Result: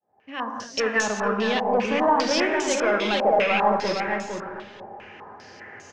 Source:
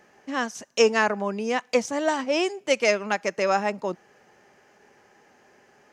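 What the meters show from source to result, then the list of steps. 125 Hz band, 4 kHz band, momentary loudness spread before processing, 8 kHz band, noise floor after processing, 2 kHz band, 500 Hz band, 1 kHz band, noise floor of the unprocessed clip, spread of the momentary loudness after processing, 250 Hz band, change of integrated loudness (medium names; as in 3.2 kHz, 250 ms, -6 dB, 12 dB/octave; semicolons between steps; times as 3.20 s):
no reading, +3.0 dB, 9 LU, +2.0 dB, -50 dBFS, +2.0 dB, +1.0 dB, +5.0 dB, -59 dBFS, 21 LU, +2.5 dB, +2.0 dB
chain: fade-in on the opening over 1.78 s; peaking EQ 97 Hz +13 dB 0.49 oct; in parallel at +2 dB: compression, threshold -37 dBFS, peak gain reduction 19.5 dB; on the sum: saturation -21.5 dBFS, distortion -9 dB; on a send: feedback delay 460 ms, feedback 17%, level -4 dB; on the sum: gated-style reverb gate 270 ms flat, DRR 2.5 dB; step-sequenced low-pass 5 Hz 780–6700 Hz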